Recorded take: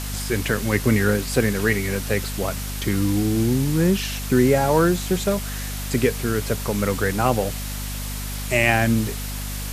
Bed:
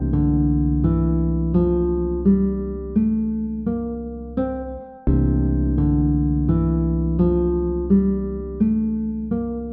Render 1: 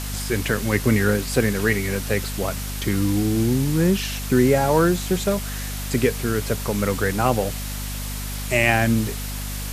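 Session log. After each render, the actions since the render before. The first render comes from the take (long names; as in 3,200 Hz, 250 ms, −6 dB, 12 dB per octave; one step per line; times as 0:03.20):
no processing that can be heard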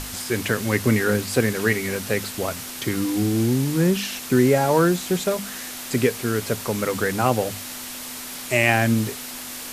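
mains-hum notches 50/100/150/200 Hz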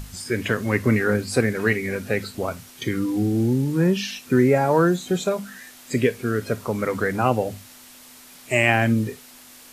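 noise reduction from a noise print 12 dB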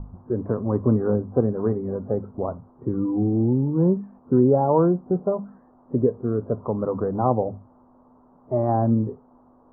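Butterworth low-pass 1,100 Hz 48 dB per octave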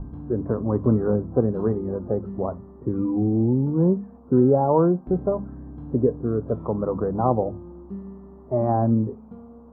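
mix in bed −19 dB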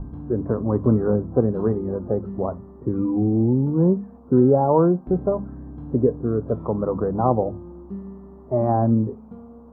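level +1.5 dB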